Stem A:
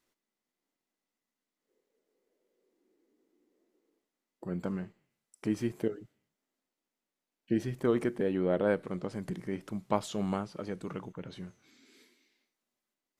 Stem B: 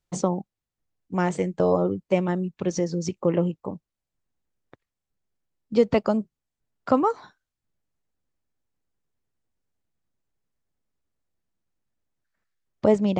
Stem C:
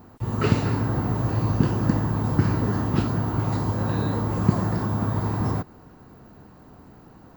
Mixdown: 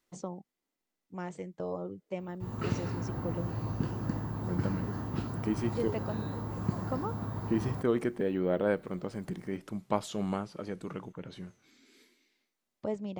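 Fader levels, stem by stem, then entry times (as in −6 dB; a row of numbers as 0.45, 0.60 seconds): −0.5, −15.5, −12.0 decibels; 0.00, 0.00, 2.20 seconds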